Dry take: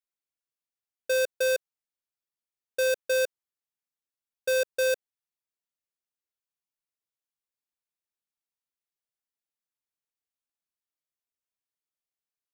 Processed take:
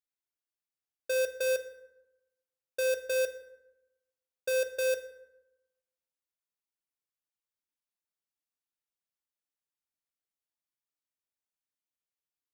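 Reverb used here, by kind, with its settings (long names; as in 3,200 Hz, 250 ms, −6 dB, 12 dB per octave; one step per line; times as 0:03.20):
feedback delay network reverb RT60 0.98 s, low-frequency decay 1.2×, high-frequency decay 0.55×, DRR 8.5 dB
level −4.5 dB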